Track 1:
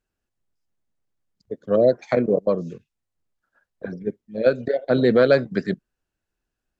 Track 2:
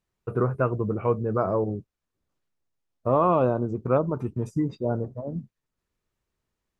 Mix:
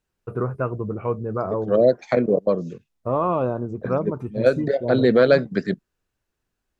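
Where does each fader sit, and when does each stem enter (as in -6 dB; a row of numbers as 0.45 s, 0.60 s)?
+0.5 dB, -1.0 dB; 0.00 s, 0.00 s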